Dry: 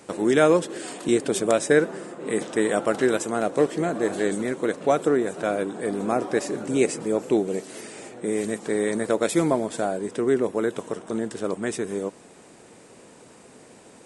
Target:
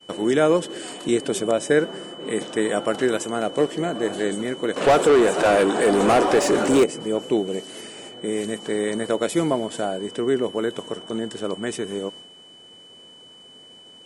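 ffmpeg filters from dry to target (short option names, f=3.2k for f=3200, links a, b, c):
-filter_complex "[0:a]asettb=1/sr,asplit=3[a][b][c];[a]atrim=end=4.764[d];[b]atrim=start=4.76:end=6.84,asetpts=PTS-STARTPTS,afade=t=in:d=0.004:c=qsin,afade=t=out:st=2.076:d=0.004:c=qsin,asplit=2[e][f];[f]highpass=f=720:p=1,volume=25dB,asoftclip=type=tanh:threshold=-7dB[g];[e][g]amix=inputs=2:normalize=0,lowpass=f=6.9k:p=1,volume=-6dB[h];[c]atrim=start=6.836[i];[d][h]acrossfade=d=0.004:c1=hsin:c2=qsin[j];[j][i]acrossfade=d=0.004:c1=qsin:c2=hsin,acrossover=split=1100[k][l];[l]alimiter=limit=-17.5dB:level=0:latency=1:release=223[m];[k][m]amix=inputs=2:normalize=0,aeval=exprs='val(0)+0.01*sin(2*PI*3000*n/s)':c=same,agate=range=-33dB:threshold=-37dB:ratio=3:detection=peak"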